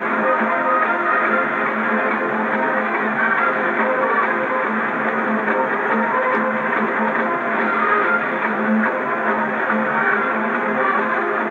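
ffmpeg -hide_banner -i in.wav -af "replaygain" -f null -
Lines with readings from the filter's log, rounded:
track_gain = +2.0 dB
track_peak = 0.394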